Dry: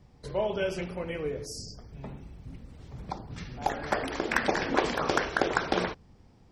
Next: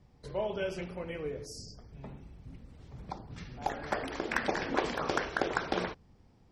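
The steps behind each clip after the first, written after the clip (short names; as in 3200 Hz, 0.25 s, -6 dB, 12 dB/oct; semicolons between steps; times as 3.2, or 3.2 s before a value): high shelf 8400 Hz -4 dB; gain -4.5 dB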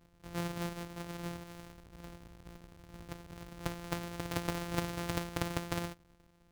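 sample sorter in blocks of 256 samples; gain -4 dB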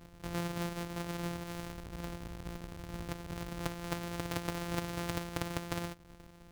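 compressor 2.5:1, threshold -49 dBFS, peak gain reduction 14.5 dB; gain +10.5 dB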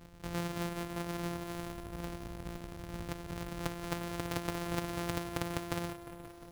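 lo-fi delay 0.177 s, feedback 80%, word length 9-bit, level -15 dB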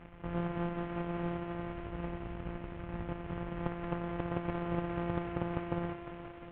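CVSD 16 kbps; gain +3 dB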